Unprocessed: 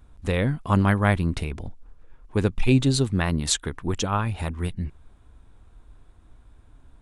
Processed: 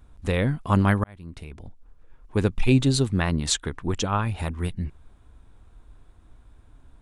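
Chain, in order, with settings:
0:01.04–0:02.39: fade in
0:03.20–0:04.23: low-pass filter 9,200 Hz 12 dB per octave

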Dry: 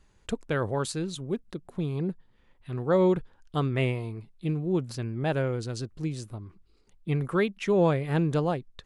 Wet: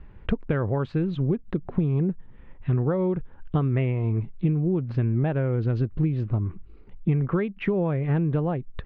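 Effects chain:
downward compressor 10 to 1, threshold −35 dBFS, peak gain reduction 17 dB
low-pass filter 2,600 Hz 24 dB per octave
low-shelf EQ 300 Hz +9 dB
level +9 dB

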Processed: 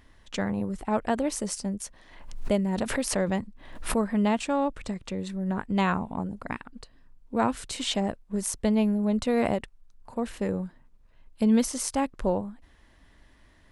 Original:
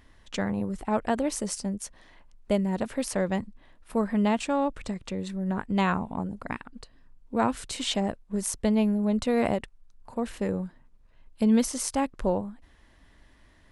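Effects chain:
0:01.80–0:04.09: background raised ahead of every attack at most 71 dB per second

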